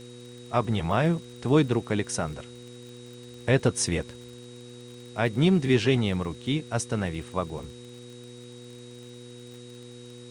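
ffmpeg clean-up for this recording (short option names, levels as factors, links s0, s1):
-af "adeclick=t=4,bandreject=f=121.7:t=h:w=4,bandreject=f=243.4:t=h:w=4,bandreject=f=365.1:t=h:w=4,bandreject=f=486.8:t=h:w=4,bandreject=f=3800:w=30,afwtdn=0.0022"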